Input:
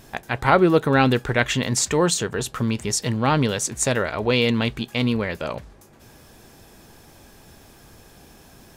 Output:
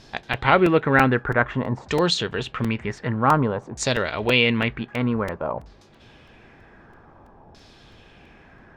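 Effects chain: LFO low-pass saw down 0.53 Hz 810–4900 Hz; crackling interface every 0.33 s, samples 128, repeat, from 0.33; gain -1.5 dB

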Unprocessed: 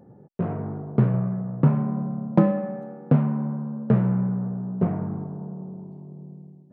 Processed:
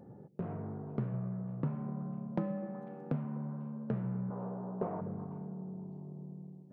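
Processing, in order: 4.3–5.01 graphic EQ 125/500/1000 Hz -8/+10/+11 dB; delay with a stepping band-pass 0.124 s, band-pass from 160 Hz, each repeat 1.4 oct, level -12 dB; compressor 2:1, threshold -41 dBFS, peak gain reduction 15.5 dB; gain -2.5 dB

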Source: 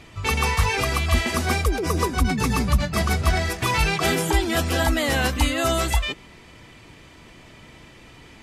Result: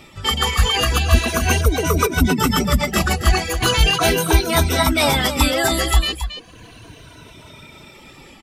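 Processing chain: moving spectral ripple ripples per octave 1.7, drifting -0.37 Hz, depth 12 dB; reverb removal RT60 0.86 s; AGC gain up to 3.5 dB; on a send: echo 0.273 s -10 dB; on the sum: formant shift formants +3 st; gain +1.5 dB

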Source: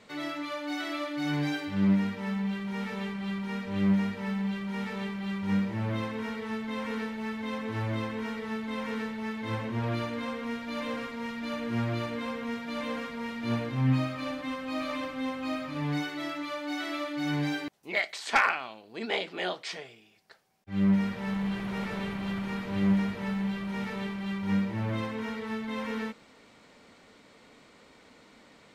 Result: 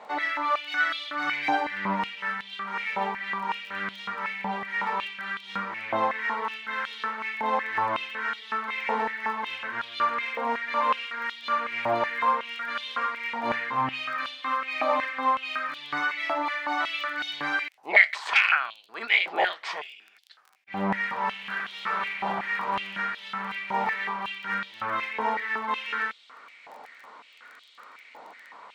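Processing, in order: tilt -4.5 dB/oct; crackle 14/s -48 dBFS; stepped high-pass 5.4 Hz 820–3400 Hz; gain +8 dB

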